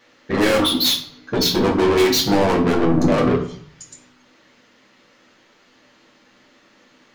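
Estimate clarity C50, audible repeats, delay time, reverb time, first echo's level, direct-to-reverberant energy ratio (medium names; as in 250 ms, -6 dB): 8.0 dB, no echo, no echo, 0.55 s, no echo, -1.5 dB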